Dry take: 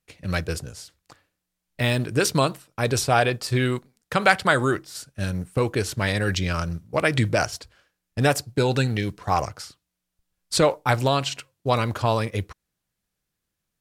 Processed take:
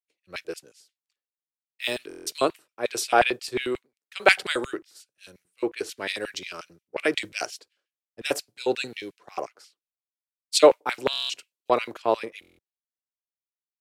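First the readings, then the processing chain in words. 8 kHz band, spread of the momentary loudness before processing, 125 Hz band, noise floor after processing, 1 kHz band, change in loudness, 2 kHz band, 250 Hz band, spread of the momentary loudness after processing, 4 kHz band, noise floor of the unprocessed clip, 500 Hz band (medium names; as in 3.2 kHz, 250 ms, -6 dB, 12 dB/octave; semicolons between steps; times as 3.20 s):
-3.5 dB, 12 LU, -26.0 dB, under -85 dBFS, -3.5 dB, -2.5 dB, -3.0 dB, -7.0 dB, 18 LU, -1.0 dB, -82 dBFS, -0.5 dB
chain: LFO high-pass square 5.6 Hz 370–2500 Hz; buffer glitch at 2.08/11.11/12.40 s, samples 1024, times 7; three bands expanded up and down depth 100%; trim -6.5 dB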